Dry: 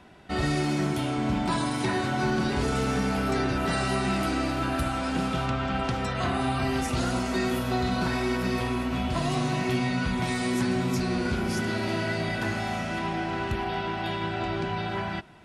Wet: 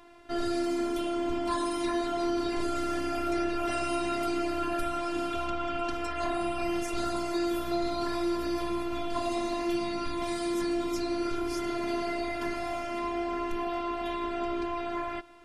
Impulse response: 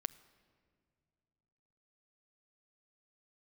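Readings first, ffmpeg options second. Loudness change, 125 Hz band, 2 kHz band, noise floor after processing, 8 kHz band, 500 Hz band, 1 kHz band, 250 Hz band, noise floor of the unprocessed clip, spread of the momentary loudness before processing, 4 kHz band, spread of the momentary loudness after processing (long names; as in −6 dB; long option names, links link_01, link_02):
−3.5 dB, −18.0 dB, −8.0 dB, −34 dBFS, −5.0 dB, −0.5 dB, −3.0 dB, −3.5 dB, −32 dBFS, 4 LU, −5.5 dB, 3 LU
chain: -filter_complex "[0:a]afftfilt=real='hypot(re,im)*cos(PI*b)':imag='0':win_size=512:overlap=0.75,asplit=2[link_01][link_02];[link_02]asoftclip=type=tanh:threshold=-29.5dB,volume=-3dB[link_03];[link_01][link_03]amix=inputs=2:normalize=0,volume=-2.5dB"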